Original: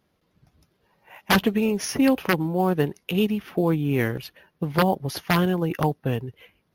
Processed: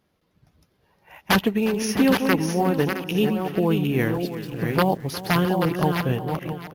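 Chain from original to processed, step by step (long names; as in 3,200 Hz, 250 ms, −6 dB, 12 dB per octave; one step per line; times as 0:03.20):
delay that plays each chunk backwards 435 ms, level −5.5 dB
0:04.14–0:05.61: centre clipping without the shift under −44 dBFS
multi-tap delay 358/664 ms −16/−12.5 dB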